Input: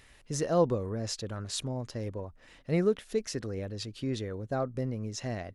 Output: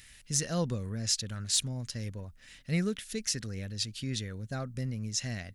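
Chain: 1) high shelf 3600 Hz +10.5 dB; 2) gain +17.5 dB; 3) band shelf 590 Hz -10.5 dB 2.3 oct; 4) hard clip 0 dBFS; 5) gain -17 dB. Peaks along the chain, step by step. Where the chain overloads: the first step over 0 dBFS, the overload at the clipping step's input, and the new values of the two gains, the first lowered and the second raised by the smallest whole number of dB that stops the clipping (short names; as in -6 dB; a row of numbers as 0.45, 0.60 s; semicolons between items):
-13.0, +4.5, +4.0, 0.0, -17.0 dBFS; step 2, 4.0 dB; step 2 +13.5 dB, step 5 -13 dB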